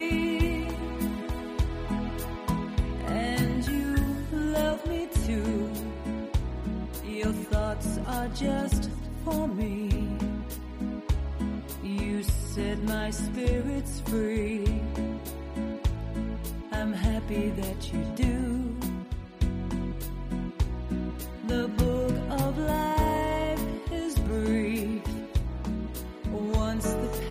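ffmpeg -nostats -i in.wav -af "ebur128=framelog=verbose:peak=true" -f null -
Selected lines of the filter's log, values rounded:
Integrated loudness:
  I:         -30.3 LUFS
  Threshold: -40.3 LUFS
Loudness range:
  LRA:         3.0 LU
  Threshold: -50.3 LUFS
  LRA low:   -31.6 LUFS
  LRA high:  -28.6 LUFS
True peak:
  Peak:      -12.5 dBFS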